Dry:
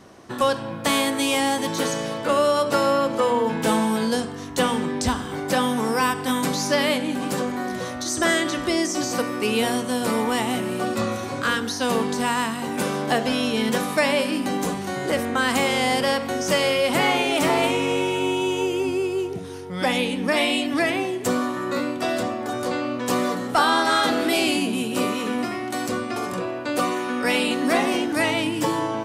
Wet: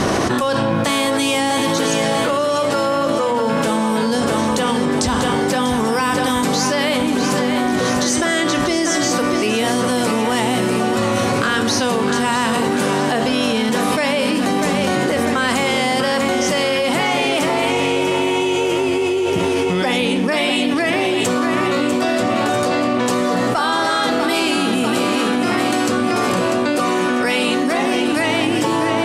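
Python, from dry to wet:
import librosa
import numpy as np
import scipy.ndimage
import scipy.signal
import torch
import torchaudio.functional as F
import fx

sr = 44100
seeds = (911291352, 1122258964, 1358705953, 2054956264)

p1 = scipy.signal.sosfilt(scipy.signal.butter(2, 11000.0, 'lowpass', fs=sr, output='sos'), x)
p2 = p1 + fx.echo_feedback(p1, sr, ms=644, feedback_pct=54, wet_db=-9.5, dry=0)
p3 = fx.env_flatten(p2, sr, amount_pct=100)
y = p3 * 10.0 ** (-1.5 / 20.0)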